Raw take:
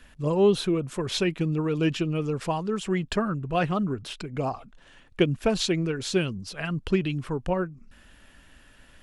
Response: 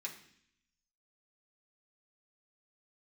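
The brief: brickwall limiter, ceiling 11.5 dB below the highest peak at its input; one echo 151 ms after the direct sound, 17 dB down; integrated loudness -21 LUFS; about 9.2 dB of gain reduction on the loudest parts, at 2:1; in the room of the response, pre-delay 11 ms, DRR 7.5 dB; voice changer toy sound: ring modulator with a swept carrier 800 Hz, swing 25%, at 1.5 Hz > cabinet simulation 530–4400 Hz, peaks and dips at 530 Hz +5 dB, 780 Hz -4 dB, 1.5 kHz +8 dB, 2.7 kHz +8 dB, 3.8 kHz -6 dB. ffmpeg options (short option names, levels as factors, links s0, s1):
-filter_complex "[0:a]acompressor=threshold=0.0251:ratio=2,alimiter=level_in=1.68:limit=0.0631:level=0:latency=1,volume=0.596,aecho=1:1:151:0.141,asplit=2[s0][s1];[1:a]atrim=start_sample=2205,adelay=11[s2];[s1][s2]afir=irnorm=-1:irlink=0,volume=0.473[s3];[s0][s3]amix=inputs=2:normalize=0,aeval=exprs='val(0)*sin(2*PI*800*n/s+800*0.25/1.5*sin(2*PI*1.5*n/s))':c=same,highpass=530,equalizer=f=530:t=q:w=4:g=5,equalizer=f=780:t=q:w=4:g=-4,equalizer=f=1500:t=q:w=4:g=8,equalizer=f=2700:t=q:w=4:g=8,equalizer=f=3800:t=q:w=4:g=-6,lowpass=f=4400:w=0.5412,lowpass=f=4400:w=1.3066,volume=7.5"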